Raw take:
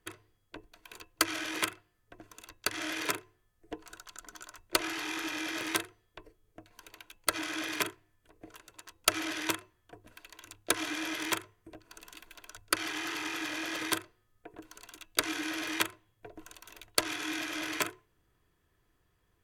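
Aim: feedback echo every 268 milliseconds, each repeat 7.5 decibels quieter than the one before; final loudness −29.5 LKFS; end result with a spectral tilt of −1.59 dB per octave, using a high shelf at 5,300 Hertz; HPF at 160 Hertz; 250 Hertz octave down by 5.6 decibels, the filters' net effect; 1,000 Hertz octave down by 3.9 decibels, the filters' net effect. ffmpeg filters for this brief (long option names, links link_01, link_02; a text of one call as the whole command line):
ffmpeg -i in.wav -af "highpass=160,equalizer=frequency=250:width_type=o:gain=-7.5,equalizer=frequency=1000:width_type=o:gain=-4.5,highshelf=frequency=5300:gain=-6,aecho=1:1:268|536|804|1072|1340:0.422|0.177|0.0744|0.0312|0.0131,volume=6.5dB" out.wav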